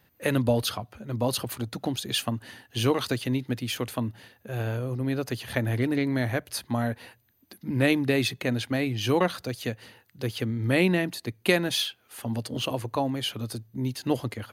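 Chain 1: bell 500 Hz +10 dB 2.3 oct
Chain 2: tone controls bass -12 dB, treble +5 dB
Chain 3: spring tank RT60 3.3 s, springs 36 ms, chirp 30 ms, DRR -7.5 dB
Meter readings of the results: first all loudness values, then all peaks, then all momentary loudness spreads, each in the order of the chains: -22.0, -29.5, -20.0 LUFS; -2.5, -7.0, -4.0 dBFS; 12, 13, 9 LU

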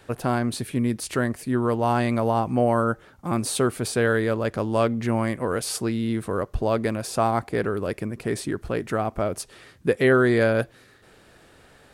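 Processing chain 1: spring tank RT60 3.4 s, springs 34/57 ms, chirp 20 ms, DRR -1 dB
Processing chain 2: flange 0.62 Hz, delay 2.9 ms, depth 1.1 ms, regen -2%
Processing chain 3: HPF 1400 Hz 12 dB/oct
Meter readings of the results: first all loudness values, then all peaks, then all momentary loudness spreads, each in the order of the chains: -21.0, -27.5, -33.5 LUFS; -3.5, -10.0, -14.0 dBFS; 7, 9, 11 LU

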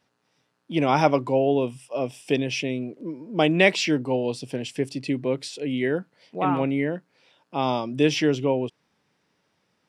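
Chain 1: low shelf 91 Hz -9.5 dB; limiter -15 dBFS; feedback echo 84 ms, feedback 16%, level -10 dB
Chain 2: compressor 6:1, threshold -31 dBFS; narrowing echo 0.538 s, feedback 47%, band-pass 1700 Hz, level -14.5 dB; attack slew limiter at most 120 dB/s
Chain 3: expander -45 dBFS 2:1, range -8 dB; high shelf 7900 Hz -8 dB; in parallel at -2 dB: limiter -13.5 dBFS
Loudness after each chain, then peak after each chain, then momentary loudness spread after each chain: -27.5, -37.5, -20.5 LUFS; -12.5, -18.5, -1.5 dBFS; 8, 10, 10 LU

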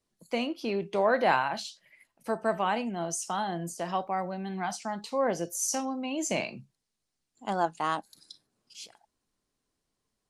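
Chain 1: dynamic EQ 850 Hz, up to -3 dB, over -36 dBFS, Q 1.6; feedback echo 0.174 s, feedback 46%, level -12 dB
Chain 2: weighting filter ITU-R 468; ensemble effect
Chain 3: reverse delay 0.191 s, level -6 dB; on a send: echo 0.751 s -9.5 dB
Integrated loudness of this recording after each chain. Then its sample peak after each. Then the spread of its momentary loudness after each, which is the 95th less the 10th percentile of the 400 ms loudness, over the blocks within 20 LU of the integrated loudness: -31.5, -30.0, -30.0 LUFS; -11.0, -9.5, -9.0 dBFS; 18, 16, 13 LU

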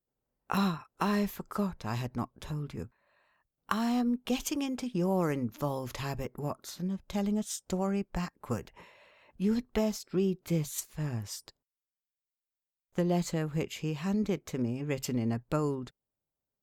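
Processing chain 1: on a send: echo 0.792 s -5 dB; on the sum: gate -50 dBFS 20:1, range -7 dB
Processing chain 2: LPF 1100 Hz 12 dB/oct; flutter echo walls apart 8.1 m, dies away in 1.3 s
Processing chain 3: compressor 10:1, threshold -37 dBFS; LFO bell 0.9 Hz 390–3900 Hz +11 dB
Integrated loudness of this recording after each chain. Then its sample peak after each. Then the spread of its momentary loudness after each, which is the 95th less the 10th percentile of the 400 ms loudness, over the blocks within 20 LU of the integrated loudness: -32.5, -30.0, -40.5 LUFS; -14.0, -13.5, -16.5 dBFS; 11, 9, 7 LU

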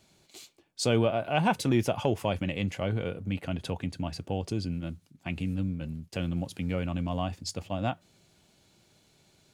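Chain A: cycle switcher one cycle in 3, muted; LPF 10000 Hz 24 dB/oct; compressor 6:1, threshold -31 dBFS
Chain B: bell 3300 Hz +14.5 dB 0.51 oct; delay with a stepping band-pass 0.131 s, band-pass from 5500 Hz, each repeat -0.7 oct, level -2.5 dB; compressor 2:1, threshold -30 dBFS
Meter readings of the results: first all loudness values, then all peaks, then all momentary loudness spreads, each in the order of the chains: -38.0, -33.0 LUFS; -18.0, -14.5 dBFS; 6, 12 LU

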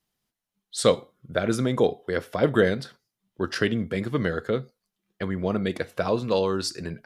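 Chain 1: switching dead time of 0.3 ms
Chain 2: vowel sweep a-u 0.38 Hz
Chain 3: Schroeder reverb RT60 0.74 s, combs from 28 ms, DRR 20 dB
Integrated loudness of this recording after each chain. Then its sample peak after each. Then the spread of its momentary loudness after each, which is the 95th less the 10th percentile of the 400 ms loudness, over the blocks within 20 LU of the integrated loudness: -26.5, -36.5, -26.0 LUFS; -4.0, -17.5, -4.0 dBFS; 9, 12, 9 LU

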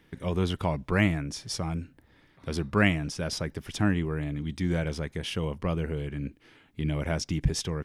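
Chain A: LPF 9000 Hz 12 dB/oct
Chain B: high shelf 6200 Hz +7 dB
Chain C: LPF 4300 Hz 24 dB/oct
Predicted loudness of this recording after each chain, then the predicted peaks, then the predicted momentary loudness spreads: -30.0, -29.5, -30.0 LUFS; -8.0, -7.0, -7.5 dBFS; 10, 10, 11 LU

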